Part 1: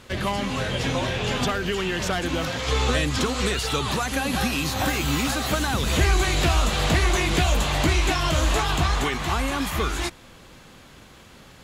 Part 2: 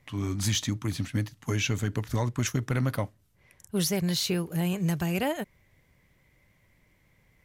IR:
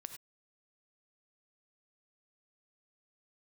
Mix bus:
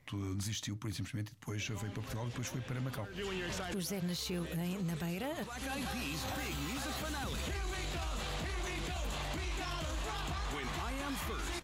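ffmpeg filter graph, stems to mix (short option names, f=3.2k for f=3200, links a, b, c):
-filter_complex "[0:a]acompressor=threshold=-21dB:ratio=6,adelay=1500,volume=-5.5dB[a];[1:a]acompressor=threshold=-31dB:ratio=6,volume=-2dB,asplit=2[b][c];[c]apad=whole_len=579431[d];[a][d]sidechaincompress=threshold=-52dB:ratio=16:attack=36:release=269[e];[e][b]amix=inputs=2:normalize=0,alimiter=level_in=6.5dB:limit=-24dB:level=0:latency=1:release=12,volume=-6.5dB"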